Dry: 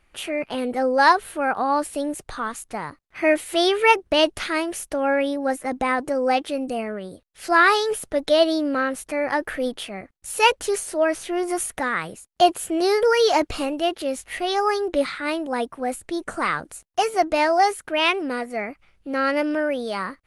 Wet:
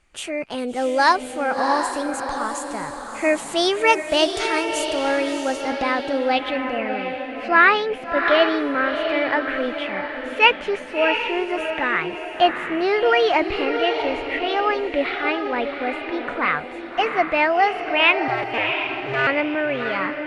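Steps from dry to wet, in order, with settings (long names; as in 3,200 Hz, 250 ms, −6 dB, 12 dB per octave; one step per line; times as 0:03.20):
0:18.28–0:19.27: sub-harmonics by changed cycles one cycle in 2, inverted
feedback delay with all-pass diffusion 690 ms, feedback 42%, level −6 dB
low-pass filter sweep 7,600 Hz → 2,500 Hz, 0:05.27–0:06.82
level −1 dB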